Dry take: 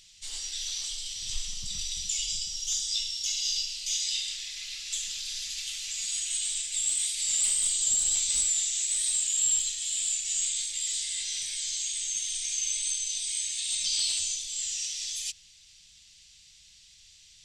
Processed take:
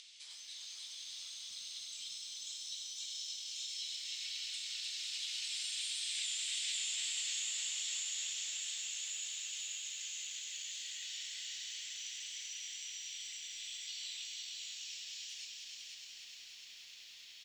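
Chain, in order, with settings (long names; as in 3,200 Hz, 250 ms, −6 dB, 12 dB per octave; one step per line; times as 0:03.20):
source passing by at 0:06.21, 27 m/s, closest 3.3 metres
high-pass filter 530 Hz 6 dB per octave
upward compression, threshold −44 dBFS
spectral tilt +4 dB per octave
on a send: single-tap delay 498 ms −5 dB
on the sum: brickwall limiter −25.5 dBFS, peak gain reduction 16.5 dB
low-pass filter 2,800 Hz 12 dB per octave
feedback echo at a low word length 301 ms, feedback 80%, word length 13 bits, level −5 dB
level +8.5 dB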